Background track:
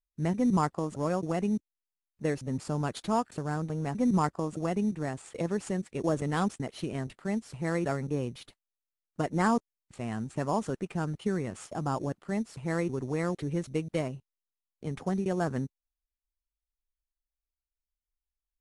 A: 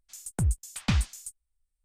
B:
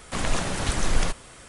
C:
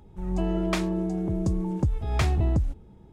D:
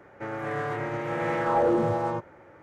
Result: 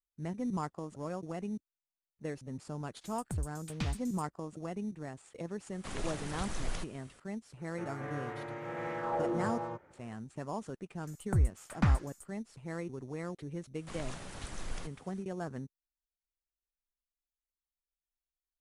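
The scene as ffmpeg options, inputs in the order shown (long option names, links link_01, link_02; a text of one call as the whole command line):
ffmpeg -i bed.wav -i cue0.wav -i cue1.wav -i cue2.wav -i cue3.wav -filter_complex "[1:a]asplit=2[link_01][link_02];[2:a]asplit=2[link_03][link_04];[0:a]volume=-9.5dB[link_05];[link_02]highshelf=frequency=2200:width_type=q:width=1.5:gain=-11.5[link_06];[link_01]atrim=end=1.84,asetpts=PTS-STARTPTS,volume=-10.5dB,afade=type=in:duration=0.004:curve=hsin,afade=type=out:start_time=1.836:duration=0.004:curve=hsin,adelay=2920[link_07];[link_03]atrim=end=1.48,asetpts=PTS-STARTPTS,volume=-14dB,afade=type=in:duration=0.004:curve=hsin,afade=type=out:start_time=1.476:duration=0.004:curve=hsin,adelay=5720[link_08];[4:a]atrim=end=2.62,asetpts=PTS-STARTPTS,volume=-10.5dB,afade=type=in:duration=0.004:curve=hsin,afade=type=out:start_time=2.616:duration=0.004:curve=hsin,adelay=7570[link_09];[link_06]atrim=end=1.84,asetpts=PTS-STARTPTS,volume=-1.5dB,afade=type=in:duration=0.004:curve=hsin,afade=type=out:start_time=1.836:duration=0.004:curve=hsin,adelay=10940[link_10];[link_04]atrim=end=1.48,asetpts=PTS-STARTPTS,volume=-17.5dB,afade=type=in:duration=0.004:curve=hsin,afade=type=out:start_time=1.476:duration=0.004:curve=hsin,adelay=13750[link_11];[link_05][link_07][link_08][link_09][link_10][link_11]amix=inputs=6:normalize=0" out.wav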